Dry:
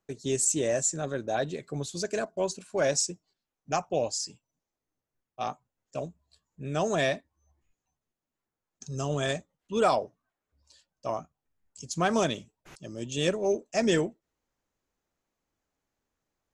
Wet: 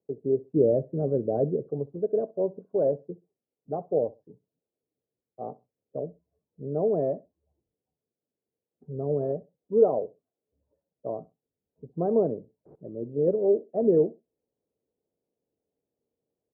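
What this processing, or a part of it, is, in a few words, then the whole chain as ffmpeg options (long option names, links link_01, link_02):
under water: -filter_complex "[0:a]highpass=110,lowpass=frequency=640:width=0.5412,lowpass=frequency=640:width=1.3066,equalizer=frequency=450:width_type=o:width=0.43:gain=9,asettb=1/sr,asplit=3[link_01][link_02][link_03];[link_01]atrim=end=0.534[link_04];[link_02]atrim=start=0.53:end=1.7,asetpts=PTS-STARTPTS,afade=type=in:duration=0.004:curve=qsin,afade=type=out:start_time=1.166:duration=0.004:curve=qsin,lowshelf=frequency=300:gain=10[link_05];[link_03]atrim=start=1.696[link_06];[link_04][link_05]acrossfade=duration=0.004:curve1=hsin:curve2=qsin[link_07];[link_07][link_06]acrossfade=duration=0.004:curve1=qsin:curve2=hsin,aecho=1:1:64|128:0.0891|0.0196"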